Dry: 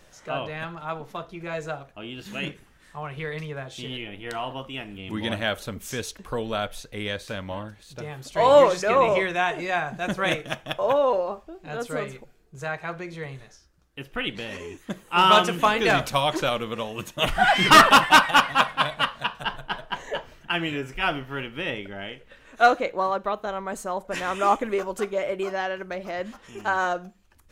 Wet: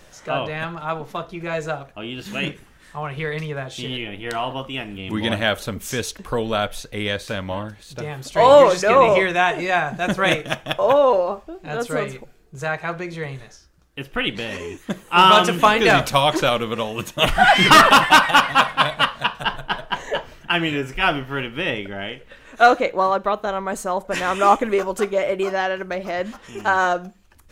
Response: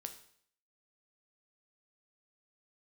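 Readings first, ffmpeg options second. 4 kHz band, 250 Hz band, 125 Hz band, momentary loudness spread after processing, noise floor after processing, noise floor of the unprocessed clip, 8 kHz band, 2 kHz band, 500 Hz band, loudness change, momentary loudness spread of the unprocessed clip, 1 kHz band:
+4.5 dB, +5.5 dB, +6.0 dB, 18 LU, -49 dBFS, -55 dBFS, +4.0 dB, +4.5 dB, +5.5 dB, +4.5 dB, 19 LU, +4.5 dB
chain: -af "alimiter=level_in=7dB:limit=-1dB:release=50:level=0:latency=1,volume=-1dB"

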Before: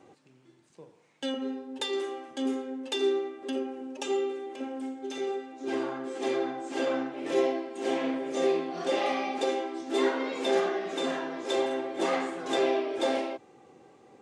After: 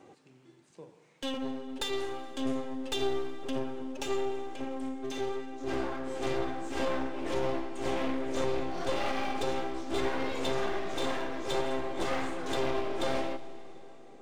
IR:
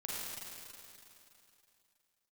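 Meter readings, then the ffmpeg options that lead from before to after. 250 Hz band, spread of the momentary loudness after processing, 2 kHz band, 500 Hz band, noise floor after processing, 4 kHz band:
-3.0 dB, 6 LU, -2.0 dB, -4.5 dB, -59 dBFS, -2.0 dB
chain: -filter_complex "[0:a]alimiter=limit=-19.5dB:level=0:latency=1:release=92,aeval=exprs='clip(val(0),-1,0.0106)':c=same,asplit=2[a][b];[1:a]atrim=start_sample=2205[c];[b][c]afir=irnorm=-1:irlink=0,volume=-14dB[d];[a][d]amix=inputs=2:normalize=0"

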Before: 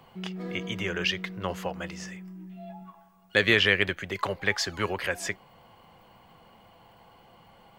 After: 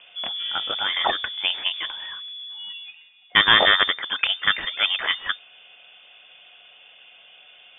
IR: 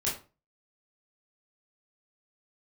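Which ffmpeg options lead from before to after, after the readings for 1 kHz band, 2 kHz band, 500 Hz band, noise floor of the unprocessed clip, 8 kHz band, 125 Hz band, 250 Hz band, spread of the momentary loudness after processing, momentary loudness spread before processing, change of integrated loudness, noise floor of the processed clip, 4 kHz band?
+10.0 dB, +5.5 dB, -2.0 dB, -57 dBFS, under -40 dB, -9.5 dB, -7.5 dB, 19 LU, 22 LU, +6.5 dB, -51 dBFS, +12.0 dB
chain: -af "aeval=exprs='0.501*(cos(1*acos(clip(val(0)/0.501,-1,1)))-cos(1*PI/2))+0.0447*(cos(3*acos(clip(val(0)/0.501,-1,1)))-cos(3*PI/2))+0.1*(cos(4*acos(clip(val(0)/0.501,-1,1)))-cos(4*PI/2))':c=same,apsyclip=10.5dB,lowpass=f=3.1k:t=q:w=0.5098,lowpass=f=3.1k:t=q:w=0.6013,lowpass=f=3.1k:t=q:w=0.9,lowpass=f=3.1k:t=q:w=2.563,afreqshift=-3600,volume=-2dB"

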